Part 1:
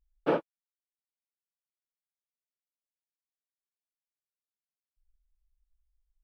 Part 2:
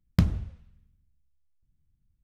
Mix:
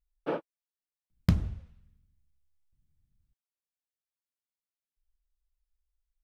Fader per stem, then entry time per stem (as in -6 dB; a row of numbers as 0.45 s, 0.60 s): -5.5 dB, -2.5 dB; 0.00 s, 1.10 s